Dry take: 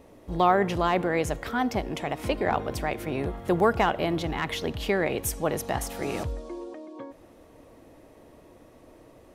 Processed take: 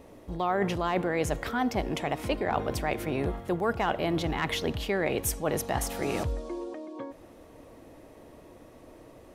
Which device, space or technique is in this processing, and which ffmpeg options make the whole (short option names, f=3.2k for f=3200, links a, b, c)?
compression on the reversed sound: -af "areverse,acompressor=threshold=-25dB:ratio=6,areverse,volume=1.5dB"